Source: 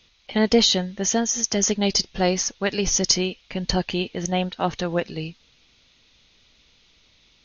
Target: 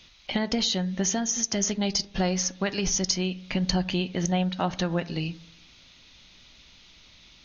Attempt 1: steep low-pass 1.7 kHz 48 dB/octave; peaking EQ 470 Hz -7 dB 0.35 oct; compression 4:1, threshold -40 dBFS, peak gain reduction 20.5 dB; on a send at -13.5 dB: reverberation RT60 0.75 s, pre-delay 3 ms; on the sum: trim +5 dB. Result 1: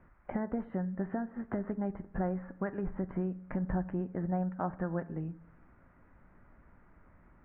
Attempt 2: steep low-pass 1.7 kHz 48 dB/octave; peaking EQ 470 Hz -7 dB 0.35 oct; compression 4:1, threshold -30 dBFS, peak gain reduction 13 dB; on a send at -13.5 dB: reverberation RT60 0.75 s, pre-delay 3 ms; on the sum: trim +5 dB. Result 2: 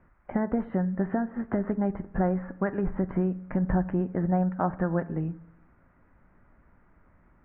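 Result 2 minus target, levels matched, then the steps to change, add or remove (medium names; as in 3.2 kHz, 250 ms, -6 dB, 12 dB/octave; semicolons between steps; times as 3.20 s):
2 kHz band -4.0 dB
remove: steep low-pass 1.7 kHz 48 dB/octave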